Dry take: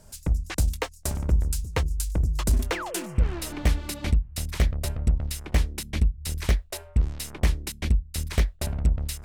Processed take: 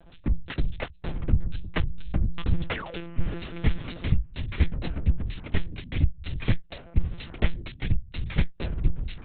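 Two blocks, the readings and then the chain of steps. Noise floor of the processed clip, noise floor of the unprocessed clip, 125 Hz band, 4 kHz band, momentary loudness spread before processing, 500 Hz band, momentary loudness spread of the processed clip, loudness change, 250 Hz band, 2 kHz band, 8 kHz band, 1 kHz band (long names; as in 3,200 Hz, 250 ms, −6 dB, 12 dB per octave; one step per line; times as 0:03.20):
−49 dBFS, −48 dBFS, −2.0 dB, −4.0 dB, 4 LU, −3.5 dB, 6 LU, −3.0 dB, +0.5 dB, −1.0 dB, below −40 dB, −4.0 dB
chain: dynamic equaliser 770 Hz, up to −6 dB, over −48 dBFS, Q 1.1
one-pitch LPC vocoder at 8 kHz 170 Hz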